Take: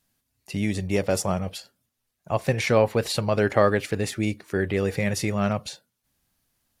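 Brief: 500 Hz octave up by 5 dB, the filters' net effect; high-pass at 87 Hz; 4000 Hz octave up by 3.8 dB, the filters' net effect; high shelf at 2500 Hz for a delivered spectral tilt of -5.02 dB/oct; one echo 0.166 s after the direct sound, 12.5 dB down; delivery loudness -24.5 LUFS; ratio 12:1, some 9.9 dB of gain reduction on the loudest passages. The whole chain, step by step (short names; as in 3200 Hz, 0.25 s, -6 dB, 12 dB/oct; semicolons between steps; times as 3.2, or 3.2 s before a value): HPF 87 Hz; bell 500 Hz +6 dB; high shelf 2500 Hz -3.5 dB; bell 4000 Hz +7.5 dB; compressor 12:1, threshold -19 dBFS; echo 0.166 s -12.5 dB; gain +1.5 dB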